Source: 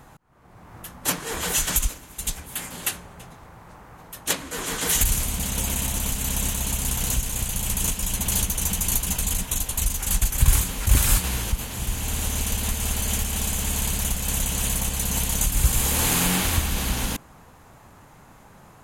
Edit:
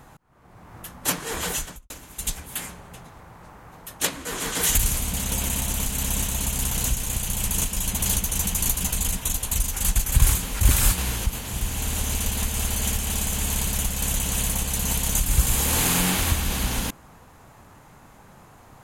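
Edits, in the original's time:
1.41–1.90 s: studio fade out
2.69–2.95 s: delete

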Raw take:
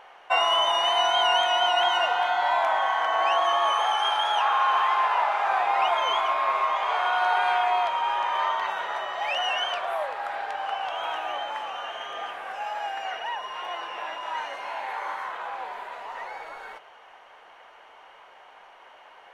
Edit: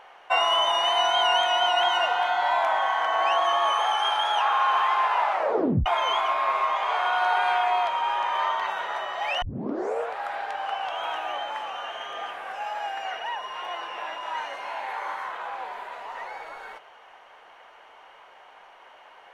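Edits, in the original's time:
5.31 s: tape stop 0.55 s
9.42 s: tape start 0.75 s

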